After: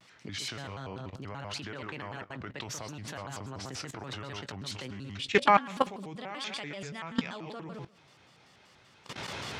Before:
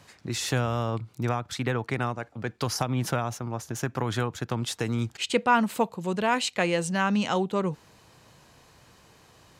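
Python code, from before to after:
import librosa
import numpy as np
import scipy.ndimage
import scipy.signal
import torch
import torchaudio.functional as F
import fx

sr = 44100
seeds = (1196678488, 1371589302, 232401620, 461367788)

p1 = fx.recorder_agc(x, sr, target_db=-17.0, rise_db_per_s=9.6, max_gain_db=30)
p2 = scipy.signal.sosfilt(scipy.signal.butter(2, 100.0, 'highpass', fs=sr, output='sos'), p1)
p3 = fx.air_absorb(p2, sr, metres=52.0)
p4 = p3 + fx.echo_feedback(p3, sr, ms=118, feedback_pct=28, wet_db=-9, dry=0)
p5 = fx.level_steps(p4, sr, step_db=21)
p6 = fx.peak_eq(p5, sr, hz=2900.0, db=7.0, octaves=2.0)
p7 = fx.doubler(p6, sr, ms=18.0, db=-13.5)
y = fx.vibrato_shape(p7, sr, shape='square', rate_hz=5.2, depth_cents=250.0)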